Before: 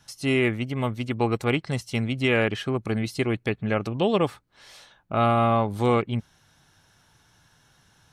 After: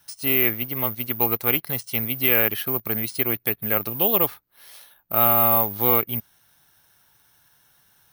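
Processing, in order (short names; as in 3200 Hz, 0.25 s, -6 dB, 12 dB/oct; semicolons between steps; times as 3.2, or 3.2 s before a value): low shelf 370 Hz -8 dB; in parallel at -9 dB: bit-crush 7-bit; on the sum: careless resampling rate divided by 3×, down filtered, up zero stuff; gain -2 dB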